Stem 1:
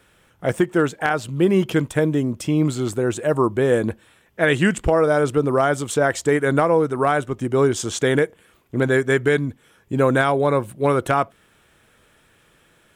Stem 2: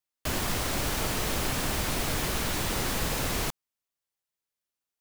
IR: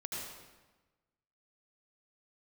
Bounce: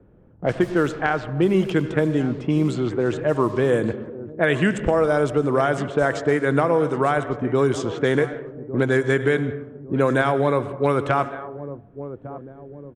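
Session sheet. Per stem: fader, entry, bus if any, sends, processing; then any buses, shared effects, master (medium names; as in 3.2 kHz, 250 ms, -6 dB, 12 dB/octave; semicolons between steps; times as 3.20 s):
-3.0 dB, 0.00 s, send -11.5 dB, echo send -16.5 dB, none
-7.0 dB, 0.20 s, no send, no echo send, auto duck -15 dB, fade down 1.85 s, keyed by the first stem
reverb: on, RT60 1.2 s, pre-delay 71 ms
echo: feedback delay 1154 ms, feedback 38%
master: level-controlled noise filter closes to 380 Hz, open at -15.5 dBFS; treble shelf 9.1 kHz -10 dB; three bands compressed up and down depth 40%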